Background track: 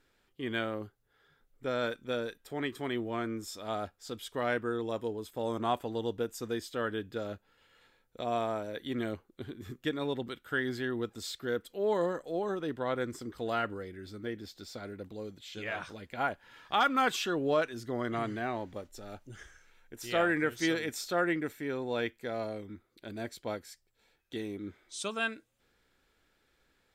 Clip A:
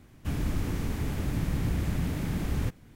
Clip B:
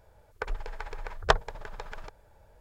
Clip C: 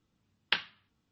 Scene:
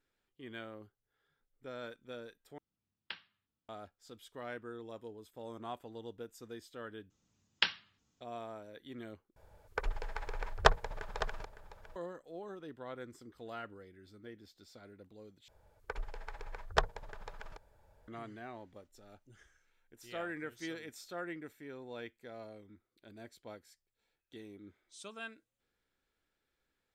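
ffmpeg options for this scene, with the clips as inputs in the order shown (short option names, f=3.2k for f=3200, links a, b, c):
-filter_complex "[3:a]asplit=2[a][b];[2:a]asplit=2[c][d];[0:a]volume=-12.5dB[e];[b]lowpass=f=6.7k:t=q:w=5.1[f];[c]aecho=1:1:558:0.224[g];[e]asplit=5[h][i][j][k][l];[h]atrim=end=2.584[m];[a]atrim=end=1.11,asetpts=PTS-STARTPTS,volume=-16dB[n];[i]atrim=start=3.686:end=7.104[o];[f]atrim=end=1.11,asetpts=PTS-STARTPTS,volume=-2.5dB[p];[j]atrim=start=8.206:end=9.364[q];[g]atrim=end=2.6,asetpts=PTS-STARTPTS,volume=-2dB[r];[k]atrim=start=11.956:end=15.484[s];[d]atrim=end=2.6,asetpts=PTS-STARTPTS,volume=-7dB[t];[l]atrim=start=18.076[u];[m][n]acrossfade=d=0.004:c1=hsin:c2=hsin[v];[v][o]acrossfade=d=0.004:c1=hsin:c2=hsin[w];[w][p]acrossfade=d=0.004:c1=hsin:c2=hsin[x];[x][q]acrossfade=d=0.004:c1=hsin:c2=hsin[y];[y][r]acrossfade=d=0.004:c1=hsin:c2=hsin[z];[z][s]acrossfade=d=0.004:c1=hsin:c2=hsin[aa];[aa][t]acrossfade=d=0.004:c1=hsin:c2=hsin[ab];[ab][u]acrossfade=d=0.004:c1=hsin:c2=hsin"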